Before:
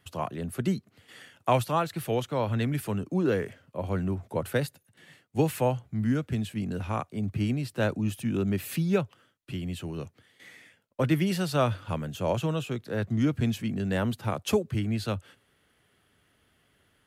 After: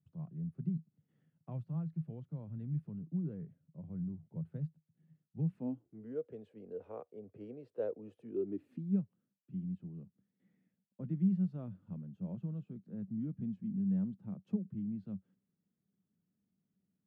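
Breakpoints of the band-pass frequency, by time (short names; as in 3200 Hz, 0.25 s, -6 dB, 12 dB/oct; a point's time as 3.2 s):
band-pass, Q 7.8
5.41 s 160 Hz
6.08 s 470 Hz
8.17 s 470 Hz
9.03 s 190 Hz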